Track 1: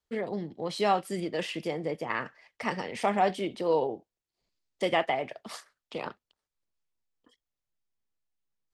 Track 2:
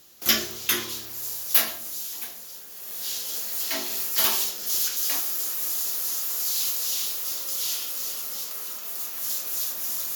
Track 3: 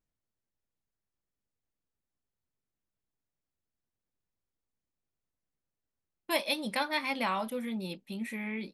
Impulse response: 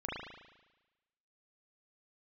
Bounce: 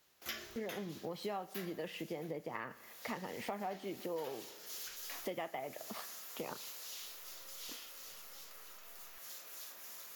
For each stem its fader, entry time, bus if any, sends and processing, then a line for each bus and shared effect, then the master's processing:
−2.0 dB, 0.45 s, send −22.5 dB, upward compression, threshold −42 dBFS
−12.5 dB, 0.00 s, no send, graphic EQ with 10 bands 125 Hz −5 dB, 250 Hz −6 dB, 2,000 Hz +4 dB; bit reduction 9 bits
muted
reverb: on, RT60 1.1 s, pre-delay 36 ms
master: high-shelf EQ 3,800 Hz −10 dB; downward compressor 5 to 1, threshold −39 dBFS, peak gain reduction 16 dB

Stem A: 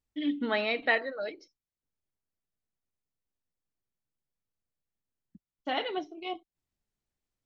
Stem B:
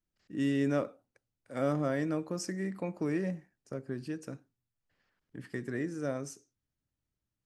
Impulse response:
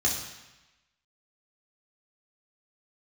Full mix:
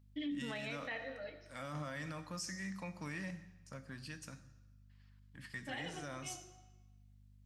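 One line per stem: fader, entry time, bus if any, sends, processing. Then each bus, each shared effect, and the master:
−1.5 dB, 0.00 s, send −24 dB, automatic ducking −11 dB, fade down 1.25 s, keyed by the second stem
−5.5 dB, 0.00 s, send −19 dB, graphic EQ with 15 bands 160 Hz +7 dB, 400 Hz −8 dB, 1,000 Hz +6 dB, 4,000 Hz +4 dB; mains hum 50 Hz, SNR 17 dB; tilt shelving filter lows −7.5 dB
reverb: on, RT60 1.0 s, pre-delay 3 ms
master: brickwall limiter −33 dBFS, peak gain reduction 11.5 dB

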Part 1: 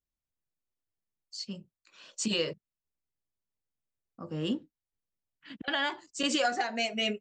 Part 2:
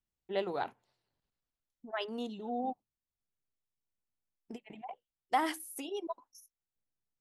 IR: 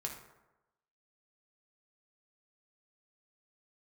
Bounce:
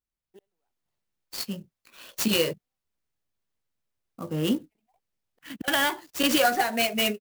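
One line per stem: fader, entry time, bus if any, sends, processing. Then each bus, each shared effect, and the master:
−1.5 dB, 0.00 s, no send, automatic gain control gain up to 8 dB
−10.5 dB, 0.05 s, no send, hum removal 48.85 Hz, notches 4; gate with flip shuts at −31 dBFS, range −40 dB; automatic ducking −17 dB, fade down 0.40 s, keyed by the first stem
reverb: not used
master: converter with an unsteady clock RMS 0.03 ms

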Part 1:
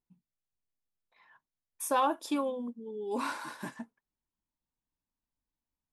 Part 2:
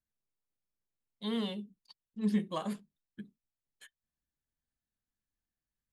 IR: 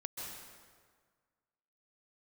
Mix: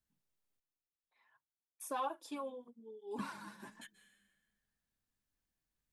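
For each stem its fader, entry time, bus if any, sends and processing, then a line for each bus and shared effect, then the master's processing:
−7.5 dB, 0.00 s, no send, parametric band 200 Hz −5.5 dB 0.58 octaves; through-zero flanger with one copy inverted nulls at 0.83 Hz, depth 6.9 ms
−1.0 dB, 0.00 s, muted 0:00.60–0:03.08, send −4 dB, no processing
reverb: on, RT60 1.7 s, pre-delay 123 ms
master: no processing

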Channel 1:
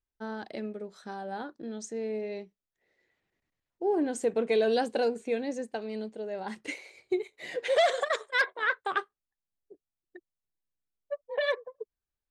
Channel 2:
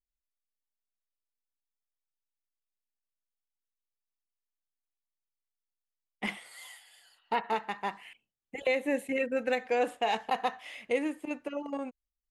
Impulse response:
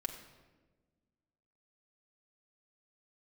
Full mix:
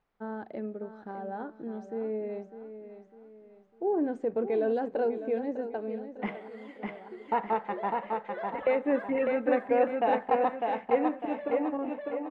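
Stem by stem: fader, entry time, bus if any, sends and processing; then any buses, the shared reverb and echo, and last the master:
−0.5 dB, 0.00 s, send −19 dB, echo send −10.5 dB, brickwall limiter −21 dBFS, peak gain reduction 6 dB; automatic ducking −17 dB, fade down 0.30 s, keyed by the second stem
+3.0 dB, 0.00 s, no send, echo send −3.5 dB, bit-depth reduction 12 bits, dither triangular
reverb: on, RT60 1.3 s, pre-delay 3 ms
echo: repeating echo 602 ms, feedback 40%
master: low-pass filter 1,300 Hz 12 dB per octave

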